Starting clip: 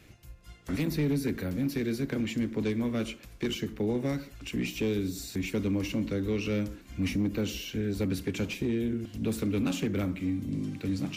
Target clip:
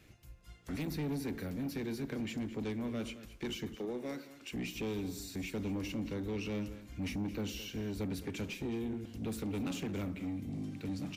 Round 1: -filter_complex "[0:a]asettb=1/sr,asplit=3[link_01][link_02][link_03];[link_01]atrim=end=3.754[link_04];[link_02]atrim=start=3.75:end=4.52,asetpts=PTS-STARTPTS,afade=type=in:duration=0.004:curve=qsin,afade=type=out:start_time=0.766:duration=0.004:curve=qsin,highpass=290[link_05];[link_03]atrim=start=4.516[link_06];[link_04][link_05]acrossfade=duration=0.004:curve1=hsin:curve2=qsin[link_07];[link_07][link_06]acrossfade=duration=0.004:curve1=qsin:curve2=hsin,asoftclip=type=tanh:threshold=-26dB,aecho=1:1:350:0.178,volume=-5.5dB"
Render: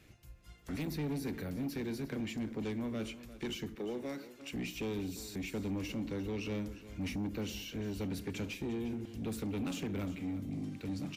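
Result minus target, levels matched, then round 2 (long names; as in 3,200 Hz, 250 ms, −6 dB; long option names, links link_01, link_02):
echo 134 ms late
-filter_complex "[0:a]asettb=1/sr,asplit=3[link_01][link_02][link_03];[link_01]atrim=end=3.754[link_04];[link_02]atrim=start=3.75:end=4.52,asetpts=PTS-STARTPTS,afade=type=in:duration=0.004:curve=qsin,afade=type=out:start_time=0.766:duration=0.004:curve=qsin,highpass=290[link_05];[link_03]atrim=start=4.516[link_06];[link_04][link_05]acrossfade=duration=0.004:curve1=hsin:curve2=qsin[link_07];[link_07][link_06]acrossfade=duration=0.004:curve1=qsin:curve2=hsin,asoftclip=type=tanh:threshold=-26dB,aecho=1:1:216:0.178,volume=-5.5dB"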